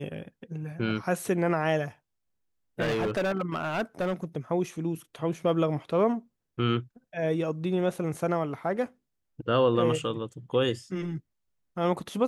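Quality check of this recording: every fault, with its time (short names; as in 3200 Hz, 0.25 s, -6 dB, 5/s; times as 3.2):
2.81–4.25 clipped -24 dBFS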